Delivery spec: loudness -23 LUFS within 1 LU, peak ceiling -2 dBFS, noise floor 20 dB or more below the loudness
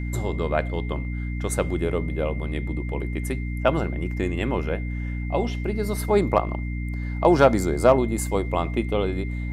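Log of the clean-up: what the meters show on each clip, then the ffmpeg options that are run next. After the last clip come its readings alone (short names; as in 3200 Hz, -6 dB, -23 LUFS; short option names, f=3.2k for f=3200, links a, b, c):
hum 60 Hz; harmonics up to 300 Hz; hum level -26 dBFS; steady tone 2100 Hz; tone level -40 dBFS; loudness -24.5 LUFS; peak -4.5 dBFS; loudness target -23.0 LUFS
-> -af "bandreject=f=60:t=h:w=4,bandreject=f=120:t=h:w=4,bandreject=f=180:t=h:w=4,bandreject=f=240:t=h:w=4,bandreject=f=300:t=h:w=4"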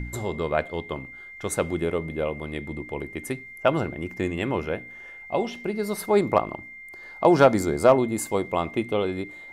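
hum none; steady tone 2100 Hz; tone level -40 dBFS
-> -af "bandreject=f=2.1k:w=30"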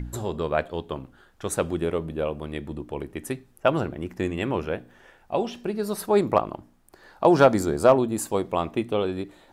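steady tone none; loudness -25.5 LUFS; peak -5.0 dBFS; loudness target -23.0 LUFS
-> -af "volume=2.5dB"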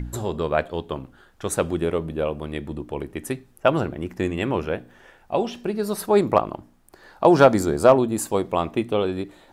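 loudness -23.0 LUFS; peak -2.5 dBFS; noise floor -56 dBFS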